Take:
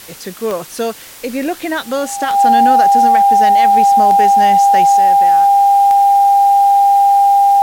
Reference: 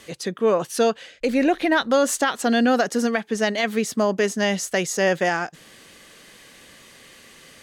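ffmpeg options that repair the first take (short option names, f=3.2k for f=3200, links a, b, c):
-af "adeclick=t=4,bandreject=f=800:w=30,afwtdn=0.018,asetnsamples=n=441:p=0,asendcmd='4.97 volume volume 8.5dB',volume=0dB"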